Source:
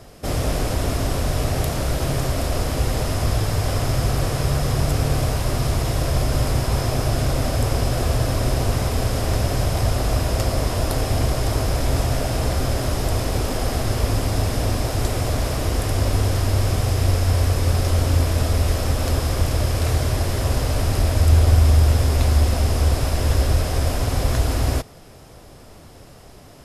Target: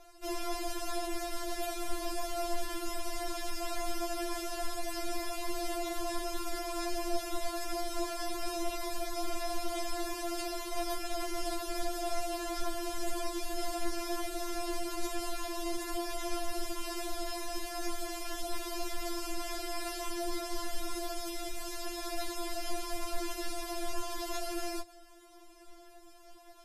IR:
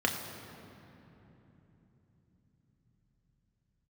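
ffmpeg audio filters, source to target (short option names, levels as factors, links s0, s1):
-filter_complex "[0:a]acrossover=split=3000[s0][s1];[s0]alimiter=limit=0.282:level=0:latency=1:release=68[s2];[s2][s1]amix=inputs=2:normalize=0,afftfilt=real='re*4*eq(mod(b,16),0)':imag='im*4*eq(mod(b,16),0)':win_size=2048:overlap=0.75,volume=0.398"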